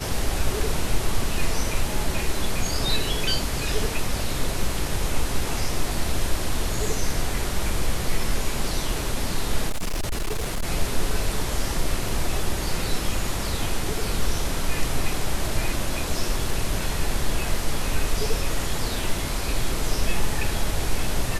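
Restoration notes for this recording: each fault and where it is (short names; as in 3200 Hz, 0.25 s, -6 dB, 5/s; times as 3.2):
9.69–10.64 clipped -21.5 dBFS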